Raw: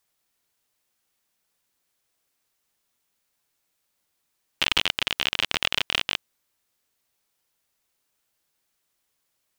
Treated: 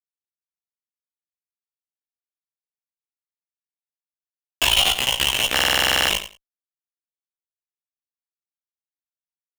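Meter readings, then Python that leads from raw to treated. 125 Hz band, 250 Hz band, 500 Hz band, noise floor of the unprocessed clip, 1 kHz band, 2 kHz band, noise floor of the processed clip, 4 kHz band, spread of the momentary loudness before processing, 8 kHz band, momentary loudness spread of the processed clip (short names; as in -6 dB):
+8.0 dB, +6.0 dB, +9.5 dB, -76 dBFS, +8.5 dB, +5.5 dB, under -85 dBFS, +6.5 dB, 5 LU, +13.5 dB, 5 LU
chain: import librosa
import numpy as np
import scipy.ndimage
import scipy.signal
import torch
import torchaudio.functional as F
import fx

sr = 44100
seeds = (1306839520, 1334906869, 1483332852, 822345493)

p1 = fx.dereverb_blind(x, sr, rt60_s=1.2)
p2 = scipy.signal.sosfilt(scipy.signal.butter(4, 770.0, 'highpass', fs=sr, output='sos'), p1)
p3 = fx.high_shelf(p2, sr, hz=2000.0, db=-7.5)
p4 = fx.env_flanger(p3, sr, rest_ms=7.0, full_db=-29.0)
p5 = fx.fuzz(p4, sr, gain_db=45.0, gate_db=-54.0)
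p6 = fx.chorus_voices(p5, sr, voices=4, hz=0.34, base_ms=17, depth_ms=2.9, mix_pct=50)
p7 = fx.doubler(p6, sr, ms=16.0, db=-6.0)
p8 = p7 + fx.echo_feedback(p7, sr, ms=90, feedback_pct=17, wet_db=-12, dry=0)
p9 = fx.buffer_glitch(p8, sr, at_s=(5.54,), block=2048, repeats=11)
y = p9 * librosa.db_to_amplitude(5.5)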